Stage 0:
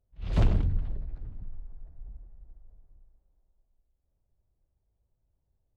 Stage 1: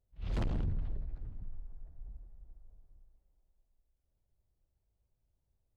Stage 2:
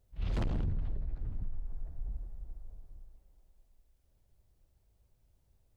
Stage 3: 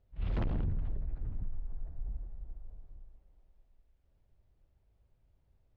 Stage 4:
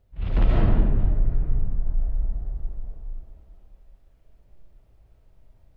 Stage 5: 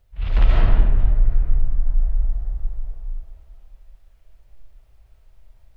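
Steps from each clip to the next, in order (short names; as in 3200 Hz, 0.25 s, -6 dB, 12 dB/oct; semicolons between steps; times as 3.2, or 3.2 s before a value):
overloaded stage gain 26 dB; gain -3.5 dB
compressor 6:1, threshold -40 dBFS, peak gain reduction 8.5 dB; gain +9.5 dB
LPF 2900 Hz 12 dB/oct
digital reverb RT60 1.3 s, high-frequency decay 0.5×, pre-delay 0.11 s, DRR -5 dB; gain +7 dB
bell 230 Hz -13.5 dB 3 oct; gain +7 dB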